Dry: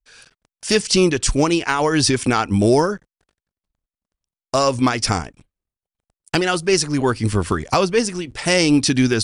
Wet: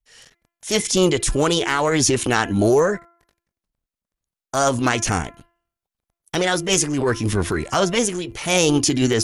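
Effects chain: de-hum 341.5 Hz, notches 7; transient shaper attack -6 dB, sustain +3 dB; formant shift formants +3 st

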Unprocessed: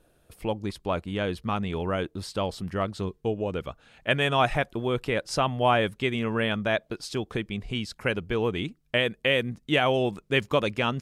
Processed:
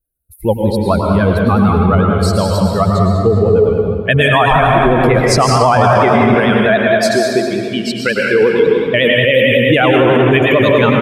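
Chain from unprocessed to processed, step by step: per-bin expansion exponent 2; 6.34–8.67 HPF 310 Hz 12 dB/oct; reverb RT60 2.1 s, pre-delay 96 ms, DRR 0.5 dB; vibrato 11 Hz 58 cents; bell 3200 Hz -5.5 dB 0.69 oct; feedback echo 0.201 s, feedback 36%, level -11 dB; maximiser +23 dB; gain -1 dB

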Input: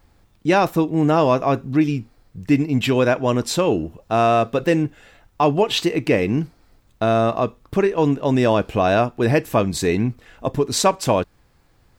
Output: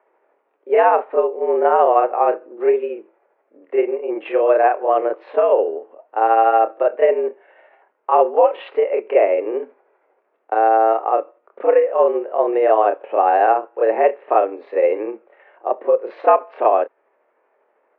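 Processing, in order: granular stretch 1.5×, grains 0.158 s; mistuned SSB +100 Hz 370–2400 Hz; tilt shelf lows +9 dB, about 840 Hz; gain +3.5 dB

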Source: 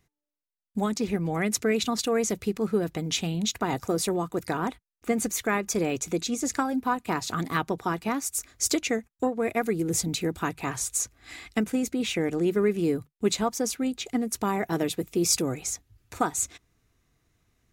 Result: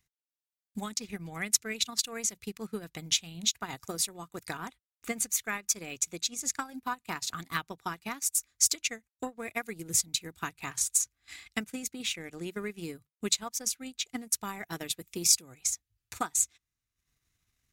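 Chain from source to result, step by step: passive tone stack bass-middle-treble 5-5-5; transient shaper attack +6 dB, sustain -11 dB; gain +4 dB

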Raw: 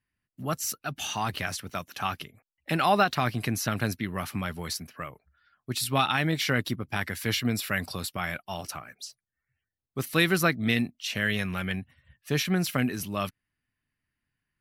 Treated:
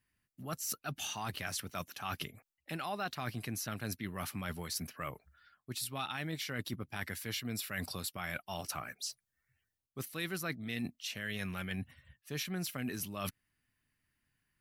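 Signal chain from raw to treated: high shelf 5100 Hz +5.5 dB; reverse; compressor 6:1, threshold -38 dBFS, peak gain reduction 19.5 dB; reverse; gain +1.5 dB

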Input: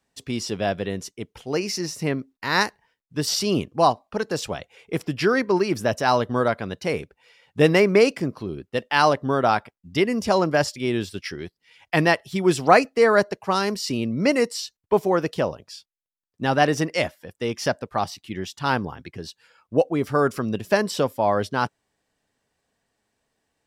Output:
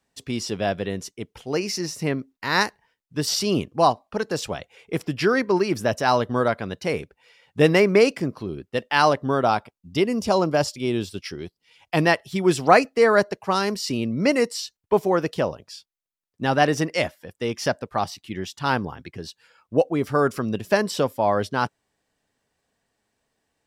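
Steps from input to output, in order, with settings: 9.42–12.04 bell 1800 Hz -7 dB 0.61 oct

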